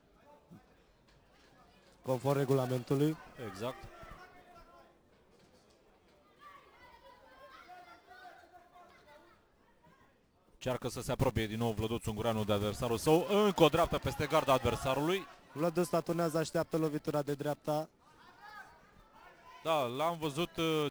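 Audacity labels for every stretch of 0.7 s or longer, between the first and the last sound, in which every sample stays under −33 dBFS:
3.710000	10.630000	silence
17.820000	19.660000	silence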